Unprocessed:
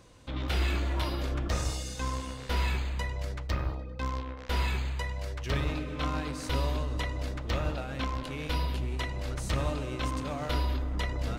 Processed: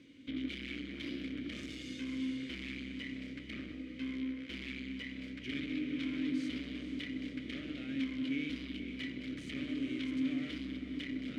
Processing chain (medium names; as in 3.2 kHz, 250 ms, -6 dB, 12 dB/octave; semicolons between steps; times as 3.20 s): overload inside the chain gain 35.5 dB; vowel filter i; echo that smears into a reverb 464 ms, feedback 60%, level -11 dB; trim +12 dB